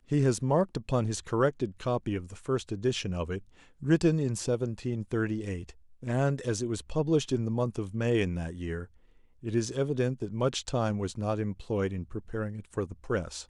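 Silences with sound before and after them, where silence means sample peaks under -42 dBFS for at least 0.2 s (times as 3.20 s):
3.39–3.82 s
5.71–6.03 s
8.85–9.43 s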